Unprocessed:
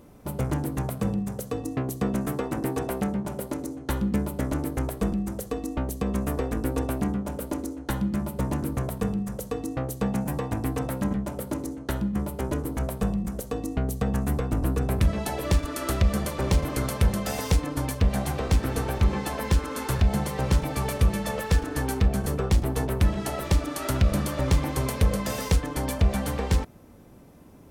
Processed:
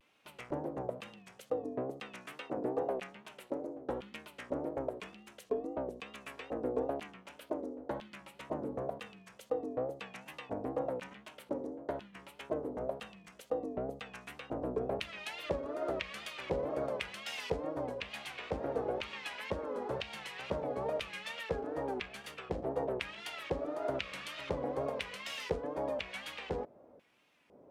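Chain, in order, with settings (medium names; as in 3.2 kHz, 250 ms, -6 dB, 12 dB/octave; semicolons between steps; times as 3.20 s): LFO band-pass square 1 Hz 560–2700 Hz; wow and flutter 110 cents; trim +1 dB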